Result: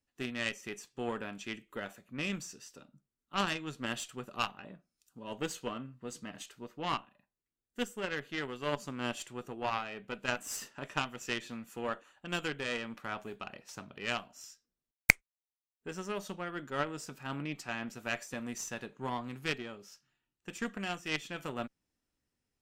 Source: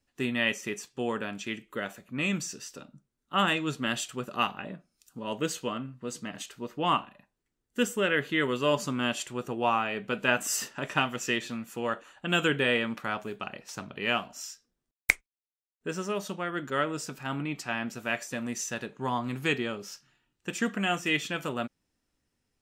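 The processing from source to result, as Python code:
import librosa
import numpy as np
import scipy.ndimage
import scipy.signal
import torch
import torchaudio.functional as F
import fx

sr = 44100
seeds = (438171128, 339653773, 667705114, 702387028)

y = fx.cheby_harmonics(x, sr, harmonics=(4, 7), levels_db=(-17, -20), full_scale_db=-3.0)
y = fx.rider(y, sr, range_db=4, speed_s=0.5)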